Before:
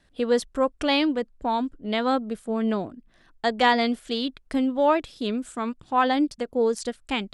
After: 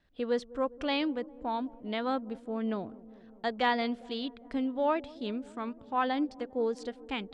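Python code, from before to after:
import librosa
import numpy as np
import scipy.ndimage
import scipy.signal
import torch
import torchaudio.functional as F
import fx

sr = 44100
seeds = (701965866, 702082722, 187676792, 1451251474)

p1 = scipy.signal.sosfilt(scipy.signal.butter(2, 4500.0, 'lowpass', fs=sr, output='sos'), x)
p2 = p1 + fx.echo_wet_lowpass(p1, sr, ms=202, feedback_pct=73, hz=620.0, wet_db=-18.5, dry=0)
y = p2 * 10.0 ** (-8.0 / 20.0)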